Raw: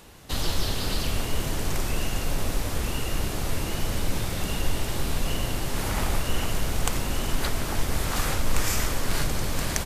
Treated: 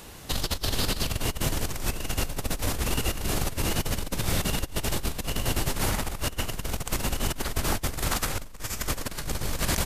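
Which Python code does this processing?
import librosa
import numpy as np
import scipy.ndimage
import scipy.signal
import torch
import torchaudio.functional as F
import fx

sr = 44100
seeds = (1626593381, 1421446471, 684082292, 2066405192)

y = fx.high_shelf(x, sr, hz=5100.0, db=3.5)
y = fx.over_compress(y, sr, threshold_db=-27.0, ratio=-0.5)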